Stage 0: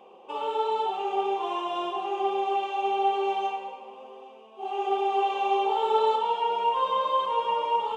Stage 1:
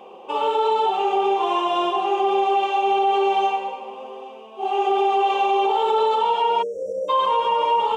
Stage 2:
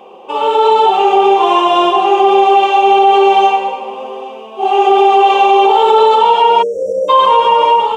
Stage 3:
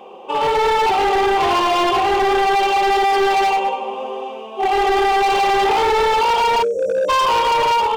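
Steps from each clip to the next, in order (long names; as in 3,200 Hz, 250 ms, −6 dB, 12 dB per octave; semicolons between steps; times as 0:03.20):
brickwall limiter −21 dBFS, peak gain reduction 8 dB; time-frequency box erased 0:06.62–0:07.09, 680–5,300 Hz; level +9 dB
automatic gain control gain up to 6 dB; level +5 dB
hard clipping −12.5 dBFS, distortion −8 dB; level −1.5 dB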